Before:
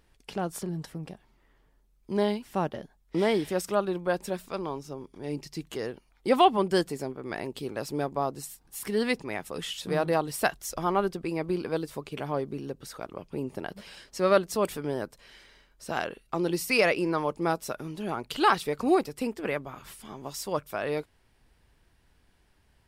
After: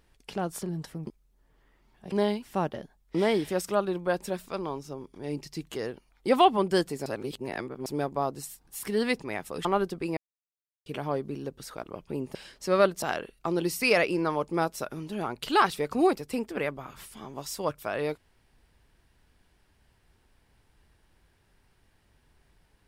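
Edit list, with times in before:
1.07–2.12 s: reverse
7.06–7.86 s: reverse
9.65–10.88 s: delete
11.40–12.09 s: mute
13.58–13.87 s: delete
14.54–15.90 s: delete

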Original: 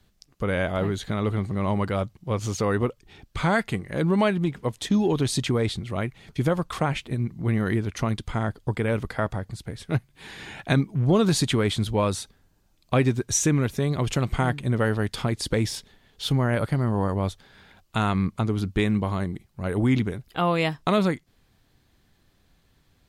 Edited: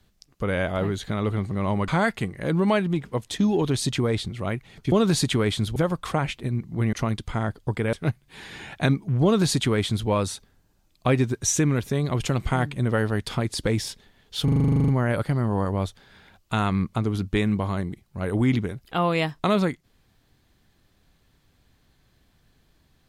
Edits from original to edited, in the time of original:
1.88–3.39 s: delete
7.60–7.93 s: delete
8.93–9.80 s: delete
11.11–11.95 s: copy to 6.43 s
16.31 s: stutter 0.04 s, 12 plays

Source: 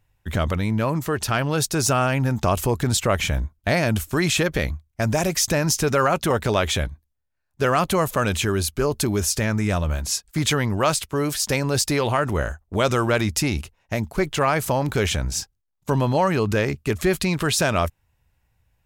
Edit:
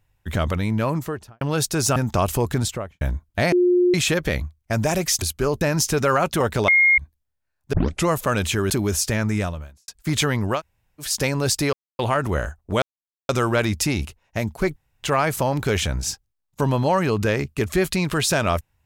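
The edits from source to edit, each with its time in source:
0.91–1.41 s: studio fade out
1.96–2.25 s: delete
2.82–3.30 s: studio fade out
3.81–4.23 s: bleep 357 Hz -13.5 dBFS
6.58–6.88 s: bleep 2.14 kHz -12 dBFS
7.63 s: tape start 0.35 s
8.60–8.99 s: move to 5.51 s
9.66–10.17 s: fade out quadratic
10.86–11.32 s: room tone, crossfade 0.10 s
12.02 s: insert silence 0.26 s
12.85 s: insert silence 0.47 s
14.32 s: insert room tone 0.27 s

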